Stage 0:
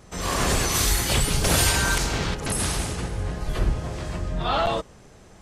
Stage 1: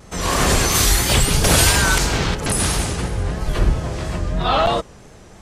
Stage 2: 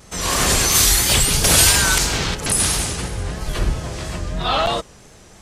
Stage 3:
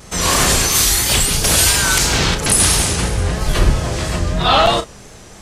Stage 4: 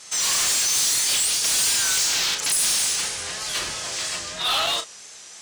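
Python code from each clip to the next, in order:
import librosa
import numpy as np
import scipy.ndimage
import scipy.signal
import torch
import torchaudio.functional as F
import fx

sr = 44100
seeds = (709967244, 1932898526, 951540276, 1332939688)

y1 = fx.vibrato(x, sr, rate_hz=3.0, depth_cents=62.0)
y1 = y1 * librosa.db_to_amplitude(6.0)
y2 = fx.high_shelf(y1, sr, hz=2300.0, db=8.0)
y2 = y2 * librosa.db_to_amplitude(-3.5)
y3 = fx.doubler(y2, sr, ms=35.0, db=-10)
y3 = fx.rider(y3, sr, range_db=4, speed_s=0.5)
y3 = y3 * librosa.db_to_amplitude(3.0)
y4 = fx.weighting(y3, sr, curve='ITU-R 468')
y4 = 10.0 ** (-9.5 / 20.0) * np.tanh(y4 / 10.0 ** (-9.5 / 20.0))
y4 = y4 * librosa.db_to_amplitude(-9.0)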